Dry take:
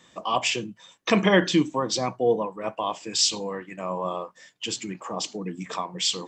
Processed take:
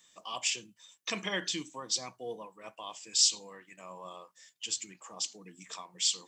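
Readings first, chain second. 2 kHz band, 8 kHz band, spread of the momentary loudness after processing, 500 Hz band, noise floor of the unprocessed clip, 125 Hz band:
-10.5 dB, -1.0 dB, 22 LU, -18.5 dB, -58 dBFS, -20.0 dB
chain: pre-emphasis filter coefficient 0.9

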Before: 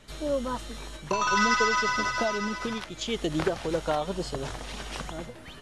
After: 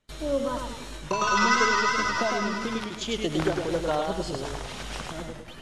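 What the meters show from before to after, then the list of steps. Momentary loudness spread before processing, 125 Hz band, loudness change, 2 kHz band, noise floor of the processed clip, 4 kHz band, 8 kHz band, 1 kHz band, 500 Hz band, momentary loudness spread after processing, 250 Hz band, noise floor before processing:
15 LU, +1.5 dB, +1.5 dB, +1.5 dB, -42 dBFS, +1.5 dB, +1.5 dB, +2.0 dB, +1.5 dB, 15 LU, +2.0 dB, -45 dBFS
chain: gate with hold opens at -36 dBFS; modulated delay 105 ms, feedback 42%, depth 110 cents, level -4.5 dB

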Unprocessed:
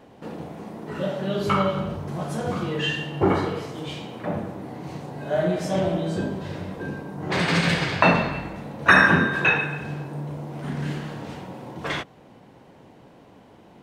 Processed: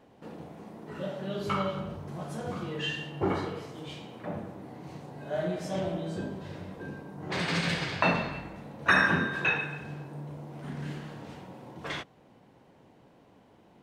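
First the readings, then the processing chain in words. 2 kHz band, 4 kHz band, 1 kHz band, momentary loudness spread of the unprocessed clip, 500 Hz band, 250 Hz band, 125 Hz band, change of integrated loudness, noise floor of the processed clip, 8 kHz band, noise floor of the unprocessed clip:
-7.5 dB, -6.5 dB, -8.5 dB, 17 LU, -8.5 dB, -8.5 dB, -8.5 dB, -8.0 dB, -59 dBFS, -7.0 dB, -51 dBFS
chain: dynamic bell 4.8 kHz, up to +3 dB, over -37 dBFS, Q 0.72; trim -8.5 dB

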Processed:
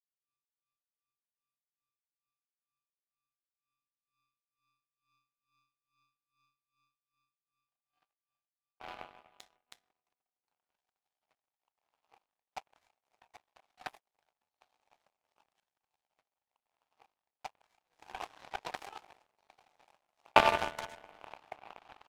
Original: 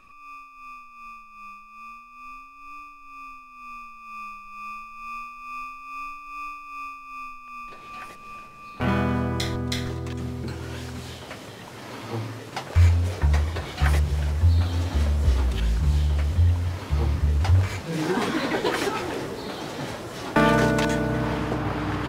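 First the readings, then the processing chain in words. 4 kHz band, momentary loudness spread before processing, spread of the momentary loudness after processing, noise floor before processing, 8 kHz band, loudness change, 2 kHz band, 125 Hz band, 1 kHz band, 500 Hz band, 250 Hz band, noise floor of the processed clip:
-11.0 dB, 21 LU, 24 LU, -46 dBFS, -17.5 dB, -7.0 dB, -11.5 dB, -37.5 dB, -7.5 dB, -13.0 dB, -26.0 dB, under -85 dBFS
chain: resonant high-pass 770 Hz, resonance Q 4.9; power-law waveshaper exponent 3

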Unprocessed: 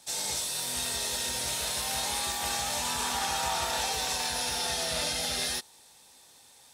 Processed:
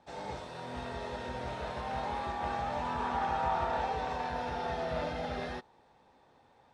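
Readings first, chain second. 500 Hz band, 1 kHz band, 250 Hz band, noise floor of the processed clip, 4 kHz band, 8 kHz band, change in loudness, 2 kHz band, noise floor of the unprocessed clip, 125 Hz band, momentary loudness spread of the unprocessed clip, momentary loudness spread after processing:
+2.0 dB, +1.5 dB, +2.5 dB, -64 dBFS, -18.0 dB, under -25 dB, -6.5 dB, -6.0 dB, -57 dBFS, +2.5 dB, 1 LU, 10 LU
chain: low-pass 1.2 kHz 12 dB/octave; trim +2.5 dB

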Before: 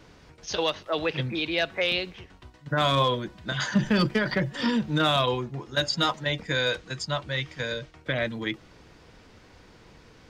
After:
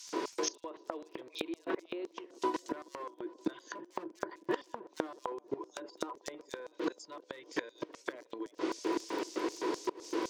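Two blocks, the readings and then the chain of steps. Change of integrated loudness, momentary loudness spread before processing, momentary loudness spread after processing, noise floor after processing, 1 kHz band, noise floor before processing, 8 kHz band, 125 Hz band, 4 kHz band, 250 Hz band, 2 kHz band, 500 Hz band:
-13.0 dB, 9 LU, 10 LU, -64 dBFS, -10.0 dB, -54 dBFS, -2.5 dB, -30.0 dB, -18.5 dB, -9.5 dB, -16.0 dB, -9.0 dB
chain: low-pass that closes with the level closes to 1.4 kHz, closed at -21 dBFS; wavefolder -20 dBFS; dynamic bell 220 Hz, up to -6 dB, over -41 dBFS, Q 2.2; reverse; compression 6:1, threshold -31 dBFS, peak gain reduction 7.5 dB; reverse; peak limiter -31.5 dBFS, peak gain reduction 8.5 dB; small resonant body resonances 330/990 Hz, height 16 dB, ringing for 50 ms; LFO high-pass square 3.9 Hz 410–6200 Hz; crackle 21 per s -50 dBFS; inverted gate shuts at -32 dBFS, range -25 dB; bass shelf 130 Hz -8.5 dB; on a send: feedback echo behind a band-pass 318 ms, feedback 69%, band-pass 450 Hz, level -20 dB; on the sum: trim +12.5 dB

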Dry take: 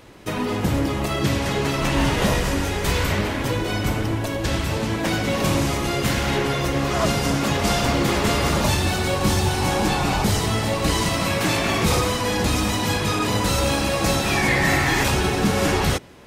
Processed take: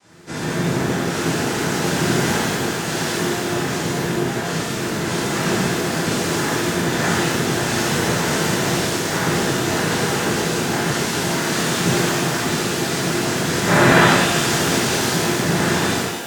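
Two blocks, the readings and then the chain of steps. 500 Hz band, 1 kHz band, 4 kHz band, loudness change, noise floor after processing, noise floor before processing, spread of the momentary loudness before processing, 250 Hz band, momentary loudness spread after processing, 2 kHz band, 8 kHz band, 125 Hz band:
+2.0 dB, +1.5 dB, +2.0 dB, +2.0 dB, -24 dBFS, -26 dBFS, 4 LU, +2.5 dB, 5 LU, +3.5 dB, +5.0 dB, -0.5 dB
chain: comb filter that takes the minimum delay 0.31 ms; time-frequency box 13.67–14.05 s, 220–1300 Hz +11 dB; noise-vocoded speech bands 3; pitch-shifted reverb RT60 1.3 s, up +12 st, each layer -8 dB, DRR -12 dB; trim -10 dB

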